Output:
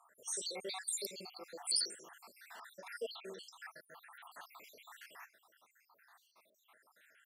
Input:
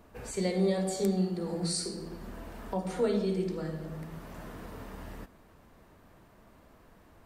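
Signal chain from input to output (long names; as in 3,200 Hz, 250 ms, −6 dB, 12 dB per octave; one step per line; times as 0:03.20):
time-frequency cells dropped at random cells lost 75%
high-pass filter 1,200 Hz 12 dB per octave
dynamic equaliser 9,200 Hz, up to +4 dB, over −58 dBFS, Q 0.76
level +4.5 dB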